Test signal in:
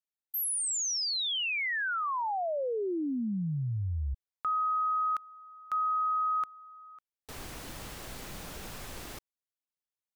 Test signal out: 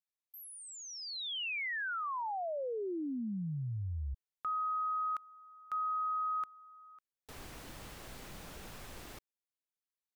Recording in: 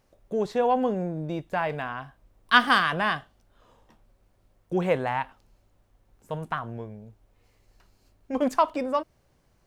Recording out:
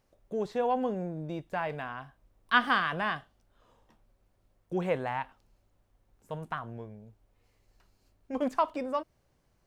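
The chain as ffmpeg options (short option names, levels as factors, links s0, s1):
-filter_complex "[0:a]acrossover=split=3800[s0][s1];[s1]acompressor=threshold=0.00501:ratio=4:attack=1:release=60[s2];[s0][s2]amix=inputs=2:normalize=0,volume=0.531"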